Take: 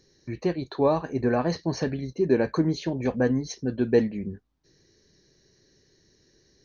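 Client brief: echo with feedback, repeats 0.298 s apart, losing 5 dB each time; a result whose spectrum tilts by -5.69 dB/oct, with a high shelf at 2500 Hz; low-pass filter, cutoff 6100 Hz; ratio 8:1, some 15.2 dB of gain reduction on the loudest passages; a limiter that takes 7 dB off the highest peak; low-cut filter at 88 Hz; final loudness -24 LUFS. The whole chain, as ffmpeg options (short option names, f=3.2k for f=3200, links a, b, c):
-af "highpass=88,lowpass=6.1k,highshelf=f=2.5k:g=4,acompressor=threshold=-31dB:ratio=8,alimiter=level_in=3.5dB:limit=-24dB:level=0:latency=1,volume=-3.5dB,aecho=1:1:298|596|894|1192|1490|1788|2086:0.562|0.315|0.176|0.0988|0.0553|0.031|0.0173,volume=13dB"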